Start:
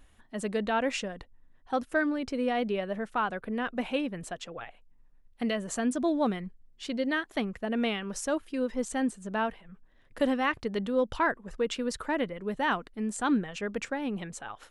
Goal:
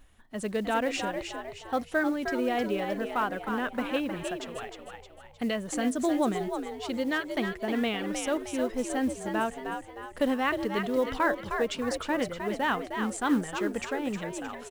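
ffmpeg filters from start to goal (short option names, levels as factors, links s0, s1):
-filter_complex "[0:a]acrusher=bits=7:mode=log:mix=0:aa=0.000001,asplit=6[s0][s1][s2][s3][s4][s5];[s1]adelay=310,afreqshift=67,volume=0.473[s6];[s2]adelay=620,afreqshift=134,volume=0.214[s7];[s3]adelay=930,afreqshift=201,volume=0.0955[s8];[s4]adelay=1240,afreqshift=268,volume=0.0432[s9];[s5]adelay=1550,afreqshift=335,volume=0.0195[s10];[s0][s6][s7][s8][s9][s10]amix=inputs=6:normalize=0"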